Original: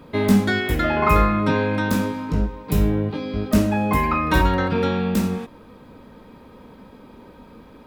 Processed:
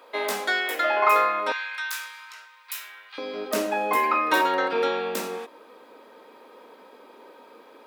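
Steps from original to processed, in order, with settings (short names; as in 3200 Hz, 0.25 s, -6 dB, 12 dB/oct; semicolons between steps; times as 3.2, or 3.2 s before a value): HPF 500 Hz 24 dB/oct, from 1.52 s 1400 Hz, from 3.18 s 370 Hz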